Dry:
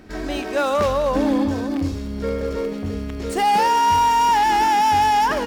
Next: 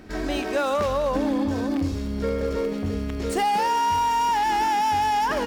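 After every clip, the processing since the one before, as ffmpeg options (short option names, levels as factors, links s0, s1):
-af "acompressor=threshold=0.1:ratio=6"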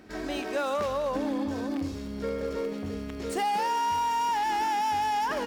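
-af "lowshelf=f=94:g=-10.5,volume=0.562"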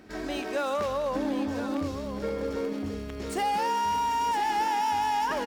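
-af "aecho=1:1:1017:0.335"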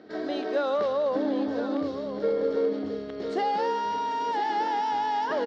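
-af "highpass=190,equalizer=f=310:t=q:w=4:g=3,equalizer=f=460:t=q:w=4:g=7,equalizer=f=660:t=q:w=4:g=5,equalizer=f=960:t=q:w=4:g=-3,equalizer=f=2500:t=q:w=4:g=-10,equalizer=f=4100:t=q:w=4:g=3,lowpass=f=4600:w=0.5412,lowpass=f=4600:w=1.3066"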